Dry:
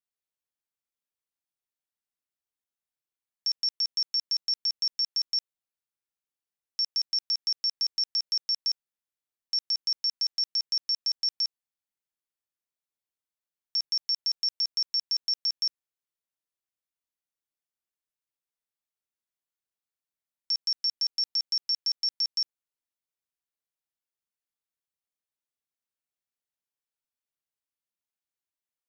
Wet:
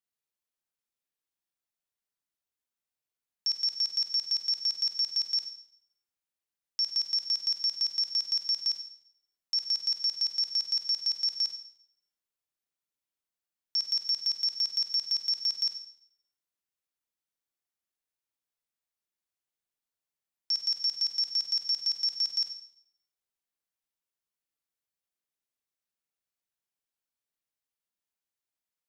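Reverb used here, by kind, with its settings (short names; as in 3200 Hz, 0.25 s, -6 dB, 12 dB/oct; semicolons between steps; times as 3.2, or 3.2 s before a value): Schroeder reverb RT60 0.64 s, combs from 33 ms, DRR 5 dB; gain -1 dB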